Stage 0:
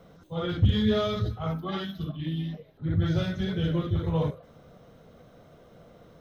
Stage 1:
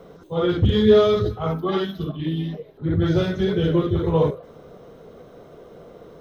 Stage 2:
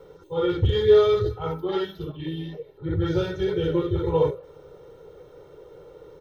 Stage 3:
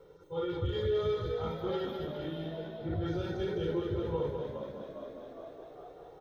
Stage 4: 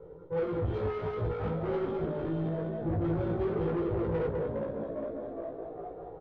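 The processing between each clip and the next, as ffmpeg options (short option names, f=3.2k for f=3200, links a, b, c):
-af "equalizer=f=100:t=o:w=0.67:g=-3,equalizer=f=400:t=o:w=0.67:g=11,equalizer=f=1k:t=o:w=0.67:g=4,volume=4.5dB"
-af "aecho=1:1:2.2:1,volume=-6.5dB"
-filter_complex "[0:a]asplit=2[a][b];[b]asplit=7[c][d][e][f][g][h][i];[c]adelay=407,afreqshift=58,volume=-13dB[j];[d]adelay=814,afreqshift=116,volume=-16.9dB[k];[e]adelay=1221,afreqshift=174,volume=-20.8dB[l];[f]adelay=1628,afreqshift=232,volume=-24.6dB[m];[g]adelay=2035,afreqshift=290,volume=-28.5dB[n];[h]adelay=2442,afreqshift=348,volume=-32.4dB[o];[i]adelay=2849,afreqshift=406,volume=-36.3dB[p];[j][k][l][m][n][o][p]amix=inputs=7:normalize=0[q];[a][q]amix=inputs=2:normalize=0,alimiter=limit=-16.5dB:level=0:latency=1:release=152,asplit=2[r][s];[s]aecho=0:1:204|408|612|816|1020:0.531|0.228|0.0982|0.0422|0.0181[t];[r][t]amix=inputs=2:normalize=0,volume=-8.5dB"
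-filter_complex "[0:a]asoftclip=type=tanh:threshold=-36.5dB,adynamicsmooth=sensitivity=2:basefreq=990,asplit=2[a][b];[b]adelay=18,volume=-3.5dB[c];[a][c]amix=inputs=2:normalize=0,volume=8dB"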